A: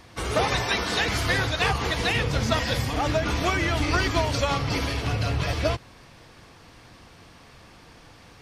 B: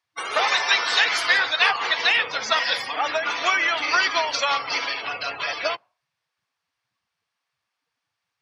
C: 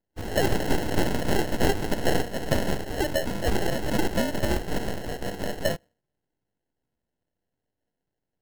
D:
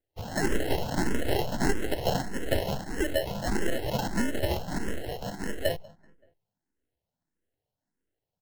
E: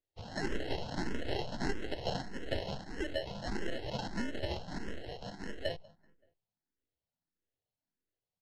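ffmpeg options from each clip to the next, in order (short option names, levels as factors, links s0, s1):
-af "afftdn=nr=35:nf=-35,highpass=1000,volume=2.37"
-filter_complex "[0:a]acrossover=split=570|1400[s0][s1][s2];[s2]aeval=exprs='abs(val(0))':c=same[s3];[s0][s1][s3]amix=inputs=3:normalize=0,acrusher=samples=37:mix=1:aa=0.000001"
-filter_complex "[0:a]asplit=2[s0][s1];[s1]adelay=191,lowpass=f=2700:p=1,volume=0.0794,asplit=2[s2][s3];[s3]adelay=191,lowpass=f=2700:p=1,volume=0.49,asplit=2[s4][s5];[s5]adelay=191,lowpass=f=2700:p=1,volume=0.49[s6];[s0][s2][s4][s6]amix=inputs=4:normalize=0,asplit=2[s7][s8];[s8]afreqshift=1.6[s9];[s7][s9]amix=inputs=2:normalize=1"
-af "lowpass=f=4600:t=q:w=1.6,volume=0.355"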